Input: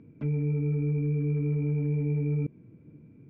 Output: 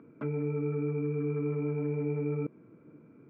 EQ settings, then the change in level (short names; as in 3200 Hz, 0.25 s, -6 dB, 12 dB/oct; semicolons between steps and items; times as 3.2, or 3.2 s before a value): HPF 540 Hz 12 dB/oct; tilt -4 dB/oct; bell 1300 Hz +13 dB 0.56 oct; +4.0 dB